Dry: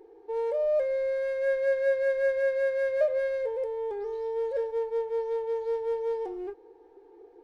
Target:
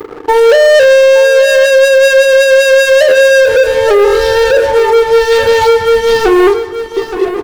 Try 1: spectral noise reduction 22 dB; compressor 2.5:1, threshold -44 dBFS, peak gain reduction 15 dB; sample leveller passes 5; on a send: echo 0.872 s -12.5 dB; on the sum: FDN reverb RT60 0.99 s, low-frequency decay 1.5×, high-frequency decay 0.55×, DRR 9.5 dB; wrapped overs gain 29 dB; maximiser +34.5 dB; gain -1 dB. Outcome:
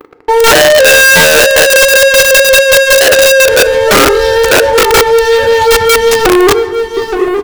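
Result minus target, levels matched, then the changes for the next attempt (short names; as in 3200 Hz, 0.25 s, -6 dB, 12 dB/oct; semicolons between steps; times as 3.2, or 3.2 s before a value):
compressor: peak gain reduction -5.5 dB
change: compressor 2.5:1, threshold -53 dBFS, peak gain reduction 20.5 dB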